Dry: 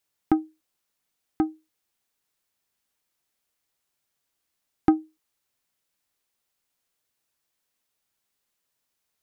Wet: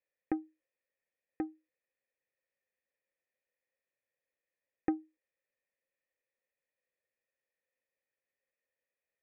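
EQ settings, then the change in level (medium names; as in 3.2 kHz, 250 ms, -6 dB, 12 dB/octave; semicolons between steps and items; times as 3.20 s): cascade formant filter e; treble shelf 2 kHz +7 dB; +4.0 dB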